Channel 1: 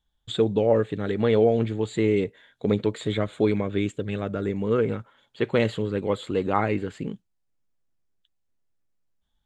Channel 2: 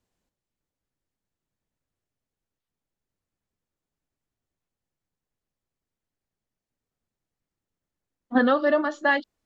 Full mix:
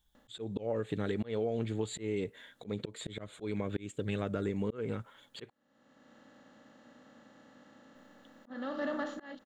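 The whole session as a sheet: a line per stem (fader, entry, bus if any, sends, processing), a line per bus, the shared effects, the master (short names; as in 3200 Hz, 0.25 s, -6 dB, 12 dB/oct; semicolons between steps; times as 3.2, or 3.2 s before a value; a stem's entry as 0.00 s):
+0.5 dB, 0.00 s, muted 5.5–7.95, no send, dry
-16.5 dB, 0.15 s, no send, per-bin compression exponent 0.4; bell 130 Hz +13.5 dB 1.4 oct; auto duck -14 dB, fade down 0.25 s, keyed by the first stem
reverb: off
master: auto swell 0.452 s; high shelf 6700 Hz +11.5 dB; compressor 6:1, threshold -30 dBFS, peak gain reduction 10 dB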